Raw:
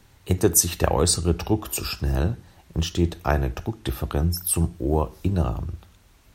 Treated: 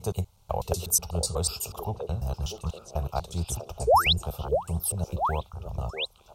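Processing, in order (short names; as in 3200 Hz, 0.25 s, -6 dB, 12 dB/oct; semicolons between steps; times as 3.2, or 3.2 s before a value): slices in reverse order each 0.123 s, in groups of 4; painted sound rise, 3.87–4.13, 390–4300 Hz -11 dBFS; fixed phaser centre 740 Hz, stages 4; on a send: delay with a stepping band-pass 0.642 s, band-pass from 420 Hz, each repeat 1.4 oct, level -2 dB; on the sum: gain -5 dB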